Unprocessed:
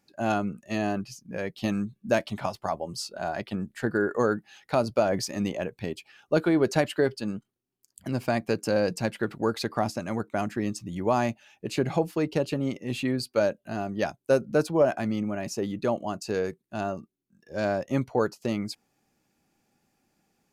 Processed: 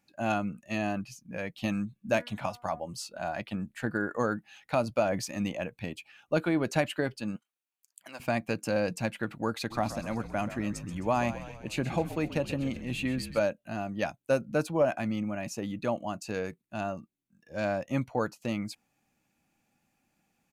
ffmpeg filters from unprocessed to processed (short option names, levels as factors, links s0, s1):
-filter_complex "[0:a]asettb=1/sr,asplit=3[s0][s1][s2];[s0]atrim=end=2.024[s3];[s1]atrim=start=2.02:end=2.8,asetpts=PTS-STARTPTS,afade=t=in:d=0.004:c=qsin,afade=t=out:st=0.776:d=0.004:c=qsin,bandreject=f=241.6:t=h:w=4,bandreject=f=483.2:t=h:w=4,bandreject=f=724.8:t=h:w=4,bandreject=f=966.4:t=h:w=4,bandreject=f=1208:t=h:w=4,bandreject=f=1449.6:t=h:w=4,bandreject=f=1691.2:t=h:w=4,bandreject=f=1932.8:t=h:w=4,bandreject=f=2174.4:t=h:w=4[s4];[s2]atrim=start=2.796[s5];[s3][s4]acrossfade=d=0.004:c1=hsin:c2=qsin[s6];[s6][s5]acrossfade=d=0.004:c1=qsin:c2=hsin,asettb=1/sr,asplit=3[s7][s8][s9];[s7]atrim=end=7.364[s10];[s8]atrim=start=7.36:end=8.2,asetpts=PTS-STARTPTS,afade=t=in:d=0.004:c=qsin,afade=t=out:st=0.836:d=0.004:c=qsin,highpass=750[s11];[s9]atrim=start=8.196[s12];[s10][s11]acrossfade=d=0.004:c1=hsin:c2=qsin[s13];[s13][s12]acrossfade=d=0.004:c1=qsin:c2=hsin,asplit=3[s14][s15][s16];[s14]afade=t=out:st=9.7:d=0.02[s17];[s15]asplit=8[s18][s19][s20][s21][s22][s23][s24][s25];[s19]adelay=131,afreqshift=-53,volume=0.237[s26];[s20]adelay=262,afreqshift=-106,volume=0.143[s27];[s21]adelay=393,afreqshift=-159,volume=0.0851[s28];[s22]adelay=524,afreqshift=-212,volume=0.0513[s29];[s23]adelay=655,afreqshift=-265,volume=0.0309[s30];[s24]adelay=786,afreqshift=-318,volume=0.0184[s31];[s25]adelay=917,afreqshift=-371,volume=0.0111[s32];[s18][s26][s27][s28][s29][s30][s31][s32]amix=inputs=8:normalize=0,afade=t=in:st=9.7:d=0.02,afade=t=out:st=13.39:d=0.02[s33];[s16]afade=t=in:st=13.39:d=0.02[s34];[s17][s33][s34]amix=inputs=3:normalize=0,equalizer=f=400:t=o:w=0.33:g=-10,equalizer=f=2500:t=o:w=0.33:g=5,equalizer=f=5000:t=o:w=0.33:g=-5,volume=0.75"